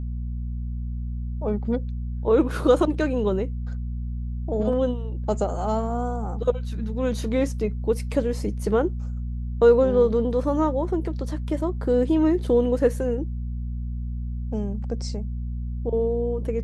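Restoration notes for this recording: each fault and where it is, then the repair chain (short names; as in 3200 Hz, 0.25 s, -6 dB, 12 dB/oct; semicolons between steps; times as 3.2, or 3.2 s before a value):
hum 60 Hz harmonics 4 -29 dBFS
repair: de-hum 60 Hz, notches 4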